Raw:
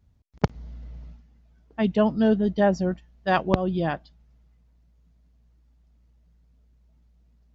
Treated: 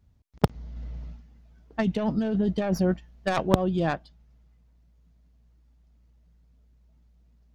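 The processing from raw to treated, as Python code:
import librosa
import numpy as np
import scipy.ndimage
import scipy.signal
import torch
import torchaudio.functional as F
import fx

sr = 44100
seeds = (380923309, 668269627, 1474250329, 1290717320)

y = fx.tracing_dist(x, sr, depth_ms=0.19)
y = fx.over_compress(y, sr, threshold_db=-24.0, ratio=-1.0, at=(0.76, 3.47))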